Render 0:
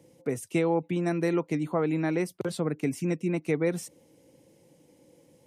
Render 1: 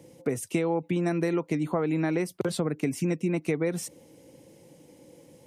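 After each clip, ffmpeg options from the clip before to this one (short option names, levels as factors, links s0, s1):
-af "acompressor=threshold=0.0316:ratio=4,volume=2"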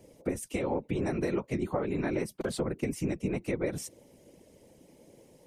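-af "afftfilt=real='hypot(re,im)*cos(2*PI*random(0))':imag='hypot(re,im)*sin(2*PI*random(1))':win_size=512:overlap=0.75,volume=1.26"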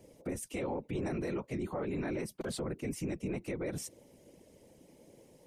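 -af "alimiter=level_in=1.33:limit=0.0631:level=0:latency=1:release=10,volume=0.75,volume=0.794"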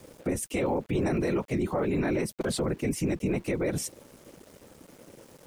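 -af "aeval=exprs='val(0)*gte(abs(val(0)),0.00112)':c=same,volume=2.66"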